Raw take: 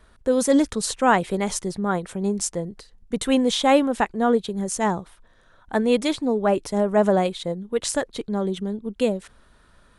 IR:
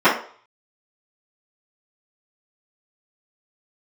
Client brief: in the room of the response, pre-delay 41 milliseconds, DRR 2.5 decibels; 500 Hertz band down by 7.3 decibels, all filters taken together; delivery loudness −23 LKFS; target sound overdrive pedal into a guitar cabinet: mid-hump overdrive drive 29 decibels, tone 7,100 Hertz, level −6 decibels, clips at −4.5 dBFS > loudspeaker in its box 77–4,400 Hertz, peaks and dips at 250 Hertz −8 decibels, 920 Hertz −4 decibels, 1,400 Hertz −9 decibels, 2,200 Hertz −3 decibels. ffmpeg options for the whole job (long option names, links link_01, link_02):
-filter_complex "[0:a]equalizer=frequency=500:width_type=o:gain=-8,asplit=2[link_01][link_02];[1:a]atrim=start_sample=2205,adelay=41[link_03];[link_02][link_03]afir=irnorm=-1:irlink=0,volume=-27.5dB[link_04];[link_01][link_04]amix=inputs=2:normalize=0,asplit=2[link_05][link_06];[link_06]highpass=frequency=720:poles=1,volume=29dB,asoftclip=type=tanh:threshold=-4.5dB[link_07];[link_05][link_07]amix=inputs=2:normalize=0,lowpass=frequency=7100:poles=1,volume=-6dB,highpass=77,equalizer=frequency=250:width_type=q:width=4:gain=-8,equalizer=frequency=920:width_type=q:width=4:gain=-4,equalizer=frequency=1400:width_type=q:width=4:gain=-9,equalizer=frequency=2200:width_type=q:width=4:gain=-3,lowpass=frequency=4400:width=0.5412,lowpass=frequency=4400:width=1.3066,volume=-6.5dB"